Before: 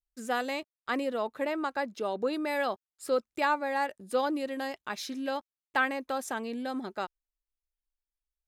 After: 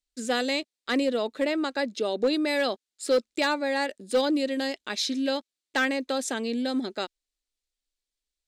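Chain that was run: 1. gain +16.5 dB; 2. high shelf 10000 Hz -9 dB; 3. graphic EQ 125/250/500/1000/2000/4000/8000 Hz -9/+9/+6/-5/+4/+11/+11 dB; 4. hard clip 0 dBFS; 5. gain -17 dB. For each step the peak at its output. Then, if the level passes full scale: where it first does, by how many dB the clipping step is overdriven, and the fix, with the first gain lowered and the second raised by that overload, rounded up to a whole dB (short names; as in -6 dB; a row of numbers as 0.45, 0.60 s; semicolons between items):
+2.0, +2.0, +6.0, 0.0, -17.0 dBFS; step 1, 6.0 dB; step 1 +10.5 dB, step 5 -11 dB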